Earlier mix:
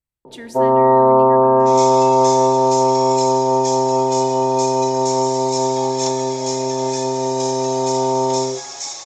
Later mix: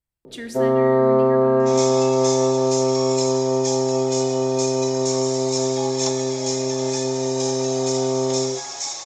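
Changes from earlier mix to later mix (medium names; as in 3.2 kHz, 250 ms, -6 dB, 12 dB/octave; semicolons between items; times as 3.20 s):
speech: send +6.5 dB; first sound: remove resonant low-pass 940 Hz, resonance Q 6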